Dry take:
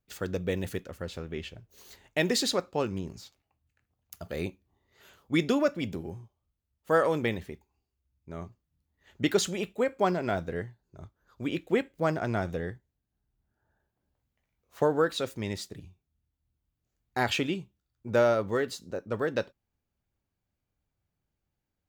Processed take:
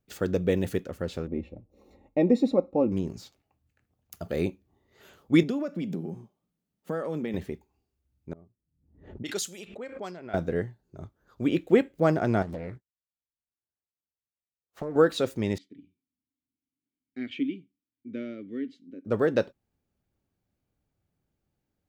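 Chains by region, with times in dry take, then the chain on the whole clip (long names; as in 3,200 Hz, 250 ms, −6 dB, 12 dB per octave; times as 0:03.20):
0:01.27–0:02.92: moving average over 28 samples + comb filter 3.7 ms, depth 63%
0:05.43–0:07.34: downward compressor 2.5 to 1, threshold −41 dBFS + low shelf with overshoot 120 Hz −12 dB, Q 3
0:08.33–0:10.34: first-order pre-emphasis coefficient 0.9 + low-pass that shuts in the quiet parts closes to 340 Hz, open at −35.5 dBFS + background raised ahead of every attack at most 82 dB per second
0:12.42–0:14.96: downward expander −48 dBFS + downward compressor, threshold −36 dBFS + highs frequency-modulated by the lows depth 0.99 ms
0:15.58–0:19.05: formant filter i + high-shelf EQ 6,500 Hz −7 dB
whole clip: parametric band 290 Hz +7 dB 2.9 octaves; notch filter 990 Hz, Q 20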